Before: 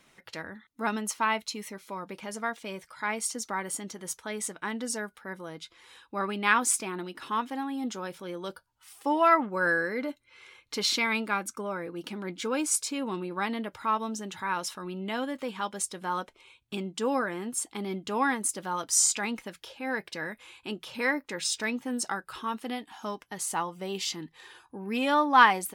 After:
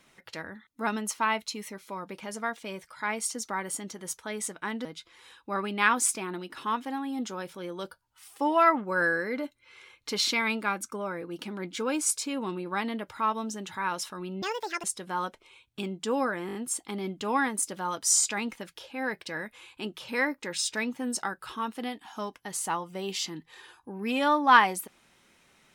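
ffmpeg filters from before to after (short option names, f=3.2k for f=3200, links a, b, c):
-filter_complex "[0:a]asplit=8[a][b][c][d][e][f][g][h];[a]atrim=end=4.852[i];[b]atrim=start=5.498:end=15.074[j];[c]atrim=start=15.07:end=15.78,asetpts=PTS-STARTPTS,asetrate=74970,aresample=44100,atrim=end_sample=18418,asetpts=PTS-STARTPTS[k];[d]atrim=start=15.776:end=17.432[l];[e]atrim=start=17.408:end=17.432[m];[f]atrim=start=17.408:end=17.432[n];[g]atrim=start=17.408:end=17.432[o];[h]atrim=start=17.408[p];[i][j]acrossfade=d=0.004:c1=hsin:c2=hsin[q];[q][k]acrossfade=d=0.004:c1=hsin:c2=hsin[r];[r][l]acrossfade=d=0.004:c1=hsin:c2=hsin[s];[s][m]acrossfade=d=0.004:c1=hsin:c2=hsin[t];[t][n]acrossfade=d=0.004:c1=hsin:c2=hsin[u];[u][o]acrossfade=d=0.004:c1=hsin:c2=hsin[v];[v][p]acrossfade=d=0.004:c1=hsin:c2=hsin"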